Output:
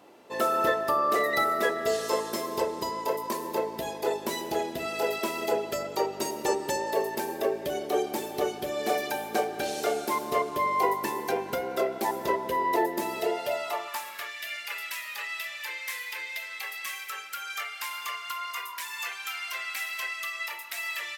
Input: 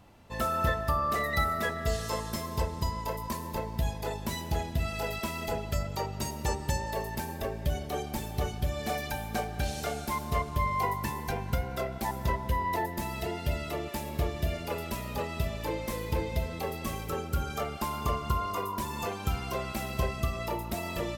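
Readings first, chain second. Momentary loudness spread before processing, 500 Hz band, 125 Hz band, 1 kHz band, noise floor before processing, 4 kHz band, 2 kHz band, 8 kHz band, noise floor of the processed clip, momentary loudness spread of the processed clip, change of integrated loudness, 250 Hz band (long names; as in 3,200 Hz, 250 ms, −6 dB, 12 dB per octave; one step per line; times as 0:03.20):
6 LU, +6.0 dB, −17.5 dB, +3.5 dB, −39 dBFS, +4.0 dB, +5.0 dB, +3.0 dB, −40 dBFS, 9 LU, +3.0 dB, 0.0 dB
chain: high-pass filter sweep 370 Hz → 1,900 Hz, 0:13.12–0:14.37
level +3 dB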